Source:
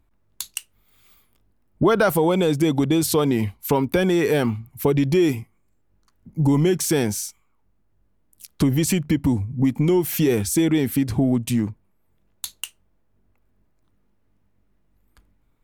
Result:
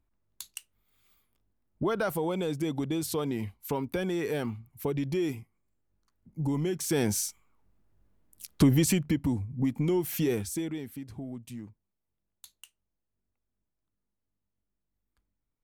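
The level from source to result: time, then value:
0:06.76 −11.5 dB
0:07.17 −2 dB
0:08.69 −2 dB
0:09.25 −8.5 dB
0:10.31 −8.5 dB
0:10.94 −20 dB

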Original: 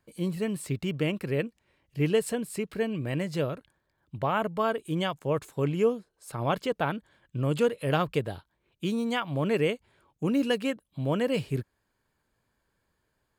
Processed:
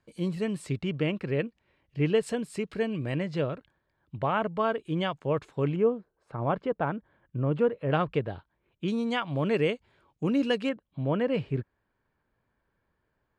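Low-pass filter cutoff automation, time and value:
6,700 Hz
from 0:00.79 3,800 Hz
from 0:02.23 6,500 Hz
from 0:03.15 3,700 Hz
from 0:05.76 1,500 Hz
from 0:07.91 2,600 Hz
from 0:08.88 5,500 Hz
from 0:10.69 2,400 Hz

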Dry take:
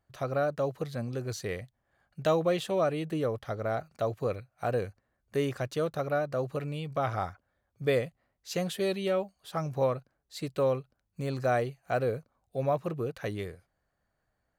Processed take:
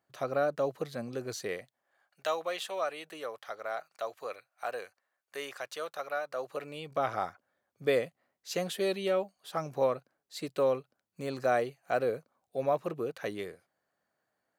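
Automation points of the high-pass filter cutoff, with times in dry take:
0:01.40 220 Hz
0:02.23 810 Hz
0:06.23 810 Hz
0:07.00 240 Hz

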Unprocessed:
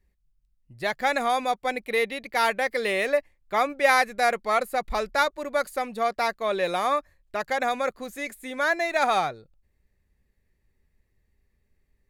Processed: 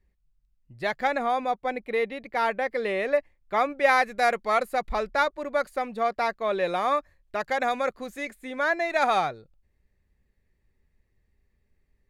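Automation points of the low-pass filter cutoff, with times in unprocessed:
low-pass filter 6 dB per octave
3,600 Hz
from 0:01.07 1,400 Hz
from 0:03.12 2,800 Hz
from 0:04.04 5,600 Hz
from 0:04.90 2,700 Hz
from 0:06.88 5,100 Hz
from 0:08.25 2,700 Hz
from 0:08.90 5,000 Hz

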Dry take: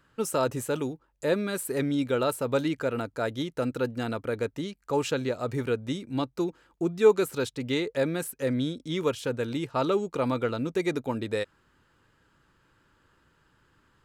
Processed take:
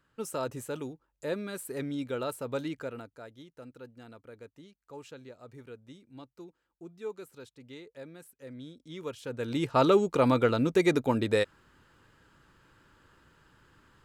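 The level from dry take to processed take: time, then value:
0:02.79 −7.5 dB
0:03.31 −19 dB
0:08.39 −19 dB
0:09.26 −9 dB
0:09.67 +3.5 dB

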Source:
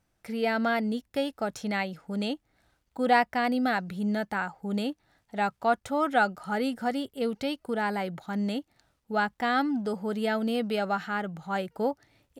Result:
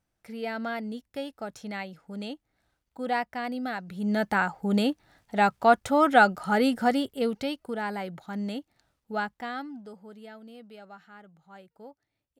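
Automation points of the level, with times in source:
0:03.83 −6 dB
0:04.26 +5.5 dB
0:06.89 +5.5 dB
0:07.76 −3 dB
0:09.18 −3 dB
0:09.69 −12 dB
0:10.41 −19 dB

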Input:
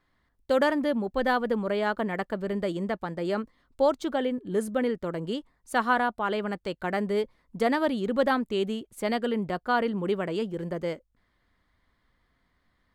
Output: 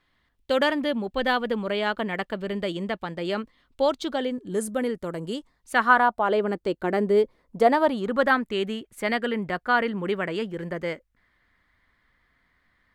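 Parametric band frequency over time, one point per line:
parametric band +9 dB 1.2 octaves
0:03.84 3,000 Hz
0:04.74 10,000 Hz
0:05.34 10,000 Hz
0:05.84 1,600 Hz
0:06.52 350 Hz
0:07.22 350 Hz
0:08.40 1,900 Hz

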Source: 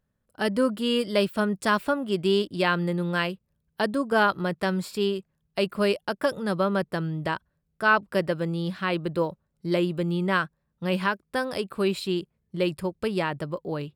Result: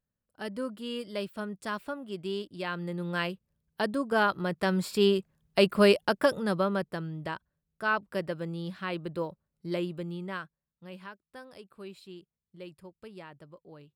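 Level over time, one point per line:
0:02.64 −11.5 dB
0:03.27 −4 dB
0:04.42 −4 dB
0:05.13 +3 dB
0:06.03 +3 dB
0:07.05 −7.5 dB
0:09.82 −7.5 dB
0:10.95 −19.5 dB

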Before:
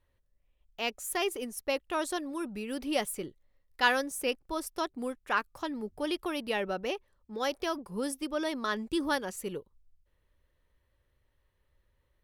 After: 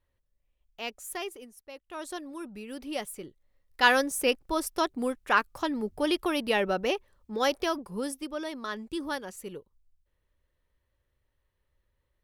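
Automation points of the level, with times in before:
0:01.13 −3.5 dB
0:01.69 −15.5 dB
0:02.11 −4 dB
0:03.22 −4 dB
0:03.97 +5.5 dB
0:07.47 +5.5 dB
0:08.47 −3.5 dB

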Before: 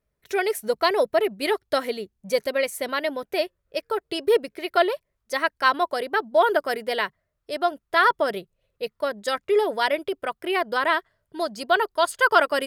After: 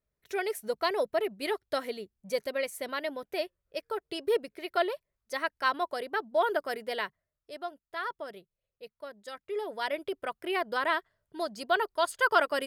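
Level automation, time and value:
0:07.05 −8 dB
0:07.85 −17 dB
0:09.35 −17 dB
0:10.10 −6.5 dB

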